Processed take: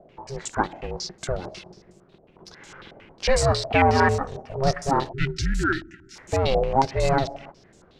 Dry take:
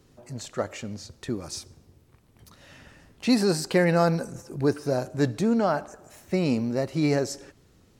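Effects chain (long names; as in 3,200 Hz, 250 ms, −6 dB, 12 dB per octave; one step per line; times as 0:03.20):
one scale factor per block 5 bits
ring modulation 270 Hz
time-frequency box erased 0:05.13–0:06.16, 400–1,300 Hz
in parallel at −5 dB: soft clipping −25 dBFS, distortion −9 dB
on the sum: low-pass on a step sequencer 11 Hz 680–7,400 Hz
level +2 dB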